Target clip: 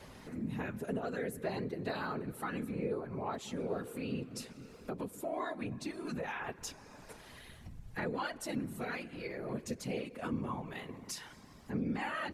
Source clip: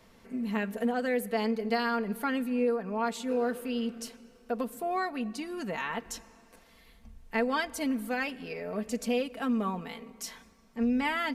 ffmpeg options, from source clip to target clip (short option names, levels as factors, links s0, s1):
-af "acompressor=threshold=0.002:ratio=2,afftfilt=real='hypot(re,im)*cos(2*PI*random(0))':imag='hypot(re,im)*sin(2*PI*random(1))':win_size=512:overlap=0.75,asetrate=40572,aresample=44100,volume=4.22"